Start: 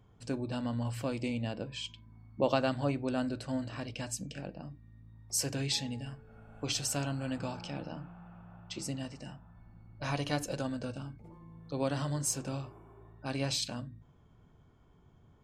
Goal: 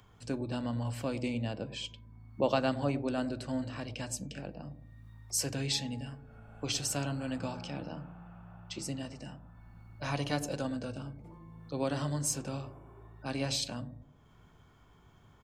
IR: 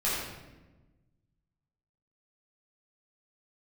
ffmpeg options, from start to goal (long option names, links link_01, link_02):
-filter_complex "[0:a]acrossover=split=110|890[link_01][link_02][link_03];[link_01]asplit=2[link_04][link_05];[link_05]adelay=19,volume=-4.5dB[link_06];[link_04][link_06]amix=inputs=2:normalize=0[link_07];[link_02]aecho=1:1:108|216|324|432:0.282|0.104|0.0386|0.0143[link_08];[link_03]acompressor=mode=upward:threshold=-59dB:ratio=2.5[link_09];[link_07][link_08][link_09]amix=inputs=3:normalize=0"